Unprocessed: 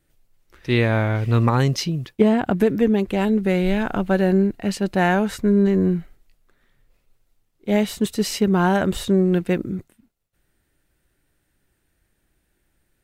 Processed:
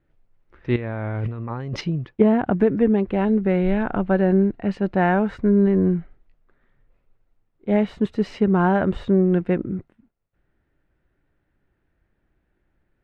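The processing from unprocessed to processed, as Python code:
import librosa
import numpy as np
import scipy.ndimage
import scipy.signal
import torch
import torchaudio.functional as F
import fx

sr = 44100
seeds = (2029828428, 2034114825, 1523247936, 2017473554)

y = scipy.signal.sosfilt(scipy.signal.butter(2, 1800.0, 'lowpass', fs=sr, output='sos'), x)
y = fx.over_compress(y, sr, threshold_db=-28.0, ratio=-1.0, at=(0.76, 1.81))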